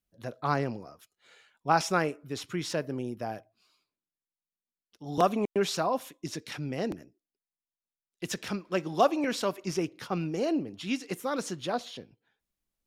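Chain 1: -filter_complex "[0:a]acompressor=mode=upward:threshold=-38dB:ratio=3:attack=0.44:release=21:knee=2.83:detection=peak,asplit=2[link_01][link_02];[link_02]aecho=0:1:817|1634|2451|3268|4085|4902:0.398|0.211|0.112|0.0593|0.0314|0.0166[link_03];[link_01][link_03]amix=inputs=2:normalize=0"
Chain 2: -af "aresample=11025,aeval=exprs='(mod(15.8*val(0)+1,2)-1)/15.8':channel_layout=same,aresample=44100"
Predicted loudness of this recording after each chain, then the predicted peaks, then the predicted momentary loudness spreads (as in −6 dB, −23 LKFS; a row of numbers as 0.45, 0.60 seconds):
−31.5, −33.0 LKFS; −9.5, −19.0 dBFS; 15, 12 LU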